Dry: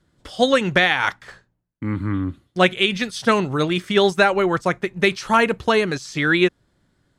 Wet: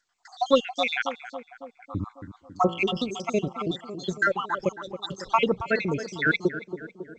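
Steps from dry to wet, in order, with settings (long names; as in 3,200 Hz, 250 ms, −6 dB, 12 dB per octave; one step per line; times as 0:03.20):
time-frequency cells dropped at random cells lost 75%
harmonic generator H 2 −33 dB, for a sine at −5 dBFS
0:02.05–0:02.94: hum removal 57.08 Hz, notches 27
tape delay 275 ms, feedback 73%, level −9 dB, low-pass 1,100 Hz
level −1.5 dB
G.722 64 kbit/s 16,000 Hz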